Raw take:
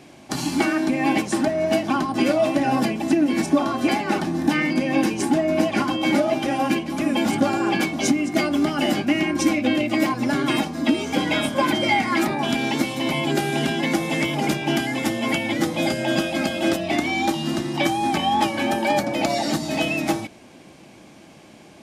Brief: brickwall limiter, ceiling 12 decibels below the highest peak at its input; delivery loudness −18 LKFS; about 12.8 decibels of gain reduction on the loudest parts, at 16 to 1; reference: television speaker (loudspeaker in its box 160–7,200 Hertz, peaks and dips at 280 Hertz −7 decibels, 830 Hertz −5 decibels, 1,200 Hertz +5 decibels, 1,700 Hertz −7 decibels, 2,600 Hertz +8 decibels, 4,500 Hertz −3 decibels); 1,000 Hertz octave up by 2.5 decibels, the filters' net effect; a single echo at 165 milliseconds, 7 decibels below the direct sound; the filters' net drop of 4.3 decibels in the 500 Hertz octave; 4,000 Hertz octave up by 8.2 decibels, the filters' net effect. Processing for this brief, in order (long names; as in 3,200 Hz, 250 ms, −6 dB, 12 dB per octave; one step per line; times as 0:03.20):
parametric band 500 Hz −8 dB
parametric band 1,000 Hz +7.5 dB
parametric band 4,000 Hz +9 dB
downward compressor 16 to 1, threshold −26 dBFS
brickwall limiter −21.5 dBFS
loudspeaker in its box 160–7,200 Hz, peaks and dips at 280 Hz −7 dB, 830 Hz −5 dB, 1,200 Hz +5 dB, 1,700 Hz −7 dB, 2,600 Hz +8 dB, 4,500 Hz −3 dB
single-tap delay 165 ms −7 dB
level +11.5 dB